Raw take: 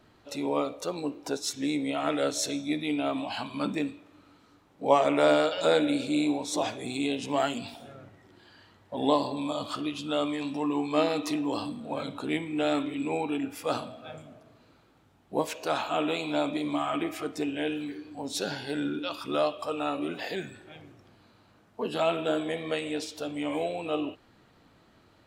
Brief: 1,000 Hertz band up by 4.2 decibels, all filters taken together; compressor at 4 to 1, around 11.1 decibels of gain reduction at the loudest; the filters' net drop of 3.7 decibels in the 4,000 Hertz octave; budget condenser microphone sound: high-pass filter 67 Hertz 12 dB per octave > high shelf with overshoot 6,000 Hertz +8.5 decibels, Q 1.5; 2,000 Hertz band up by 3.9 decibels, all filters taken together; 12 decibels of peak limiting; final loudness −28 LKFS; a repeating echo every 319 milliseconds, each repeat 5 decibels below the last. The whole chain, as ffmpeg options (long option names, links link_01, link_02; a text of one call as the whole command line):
ffmpeg -i in.wav -af "equalizer=frequency=1000:width_type=o:gain=4.5,equalizer=frequency=2000:width_type=o:gain=6.5,equalizer=frequency=4000:width_type=o:gain=-5.5,acompressor=threshold=-26dB:ratio=4,alimiter=level_in=2dB:limit=-24dB:level=0:latency=1,volume=-2dB,highpass=67,highshelf=frequency=6000:width_type=q:width=1.5:gain=8.5,aecho=1:1:319|638|957|1276|1595|1914|2233:0.562|0.315|0.176|0.0988|0.0553|0.031|0.0173,volume=6dB" out.wav